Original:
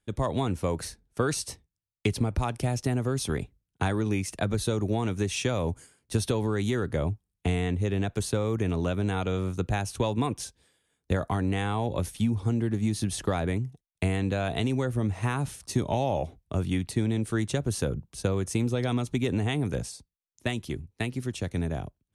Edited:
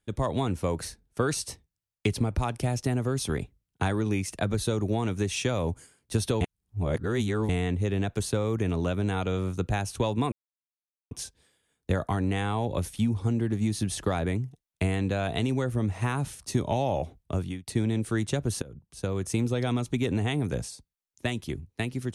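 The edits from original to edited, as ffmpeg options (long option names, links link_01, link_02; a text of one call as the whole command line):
ffmpeg -i in.wav -filter_complex "[0:a]asplit=6[link_01][link_02][link_03][link_04][link_05][link_06];[link_01]atrim=end=6.412[link_07];[link_02]atrim=start=6.408:end=7.492,asetpts=PTS-STARTPTS,areverse[link_08];[link_03]atrim=start=7.488:end=10.32,asetpts=PTS-STARTPTS,afade=type=out:start_time=2.828:duration=0.004:curve=hsin,apad=pad_dur=0.79[link_09];[link_04]atrim=start=10.32:end=16.88,asetpts=PTS-STARTPTS,afade=type=in:duration=0.004:curve=hsin,afade=type=out:start_time=6.23:duration=0.33[link_10];[link_05]atrim=start=16.88:end=17.83,asetpts=PTS-STARTPTS,afade=type=in:duration=0.004:curve=hsin,afade=type=out:start_time=0.946:duration=0.004:curve=hsin:silence=0.0749894[link_11];[link_06]atrim=start=17.83,asetpts=PTS-STARTPTS,afade=type=in:duration=0.7:silence=0.0749894[link_12];[link_07][link_08]acrossfade=duration=0.004:curve1=hsin:curve2=hsin[link_13];[link_09][link_10][link_11][link_12]concat=n=4:v=0:a=1[link_14];[link_13][link_14]acrossfade=duration=0.004:curve1=hsin:curve2=hsin" out.wav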